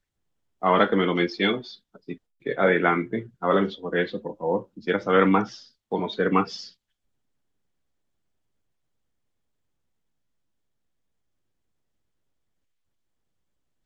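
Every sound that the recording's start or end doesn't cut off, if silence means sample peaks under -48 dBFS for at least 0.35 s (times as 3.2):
0.62–6.72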